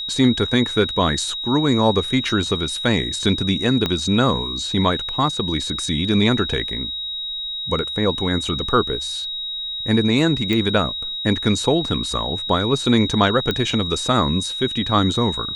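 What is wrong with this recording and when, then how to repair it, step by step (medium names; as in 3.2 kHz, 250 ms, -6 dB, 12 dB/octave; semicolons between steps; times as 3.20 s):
whine 3.8 kHz -25 dBFS
3.86 s: pop -7 dBFS
10.53 s: pop -9 dBFS
13.51 s: pop -9 dBFS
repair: de-click; band-stop 3.8 kHz, Q 30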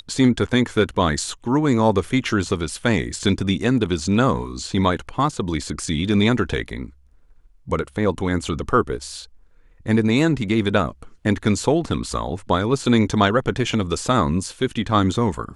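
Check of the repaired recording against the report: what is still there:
3.86 s: pop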